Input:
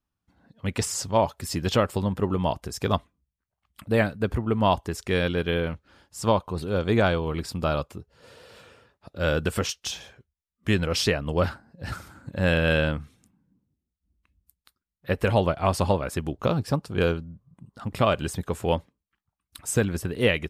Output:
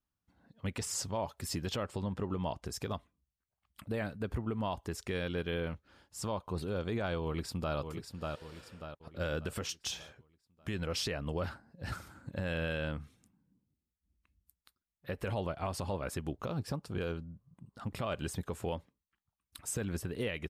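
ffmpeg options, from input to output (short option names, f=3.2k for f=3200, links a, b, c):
-filter_complex "[0:a]asettb=1/sr,asplit=3[a][b][c];[a]atrim=end=1.834[d];[b]atrim=start=1.83:end=2.66,asetpts=PTS-STARTPTS,afade=t=in:d=0.004:c=qsin,afade=t=out:st=0.826:d=0.004:c=qsin,lowpass=8.2k[e];[c]atrim=start=2.656[f];[d][e]acrossfade=d=0.004:c1=hsin:c2=qsin[g];[g][f]acrossfade=d=0.004:c1=qsin:c2=hsin,asplit=2[h][i];[i]afade=t=in:st=7.23:d=0.01,afade=t=out:st=7.76:d=0.01,aecho=0:1:590|1180|1770|2360|2950:0.421697|0.189763|0.0853935|0.0384271|0.0172922[j];[h][j]amix=inputs=2:normalize=0,alimiter=limit=-19dB:level=0:latency=1:release=147,volume=-6dB"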